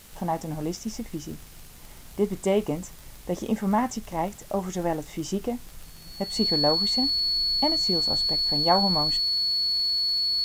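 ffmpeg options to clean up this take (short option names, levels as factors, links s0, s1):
-af "adeclick=t=4,bandreject=f=4400:w=30,afwtdn=0.0032"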